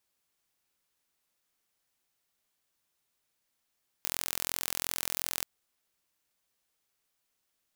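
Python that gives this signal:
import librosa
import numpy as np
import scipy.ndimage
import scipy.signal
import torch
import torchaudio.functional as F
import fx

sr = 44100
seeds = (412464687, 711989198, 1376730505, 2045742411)

y = 10.0 ** (-5.0 / 20.0) * (np.mod(np.arange(round(1.4 * sr)), round(sr / 42.8)) == 0)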